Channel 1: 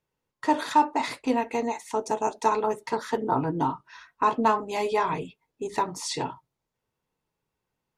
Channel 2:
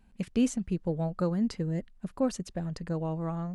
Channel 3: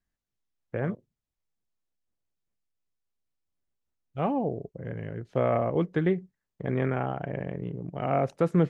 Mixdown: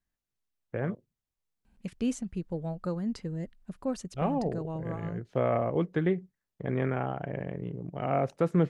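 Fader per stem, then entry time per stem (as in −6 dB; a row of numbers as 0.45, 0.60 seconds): muted, −4.0 dB, −2.0 dB; muted, 1.65 s, 0.00 s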